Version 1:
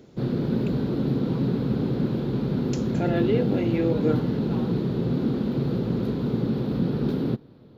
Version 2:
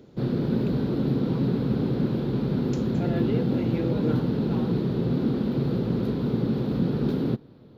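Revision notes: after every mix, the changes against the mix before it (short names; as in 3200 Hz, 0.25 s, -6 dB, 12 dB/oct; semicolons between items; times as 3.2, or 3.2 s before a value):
speech -6.5 dB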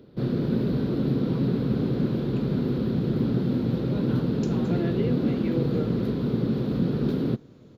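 speech: entry +1.70 s; master: add bell 850 Hz -5 dB 0.3 oct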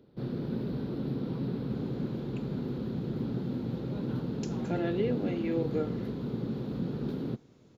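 background -9.0 dB; master: add bell 850 Hz +5 dB 0.3 oct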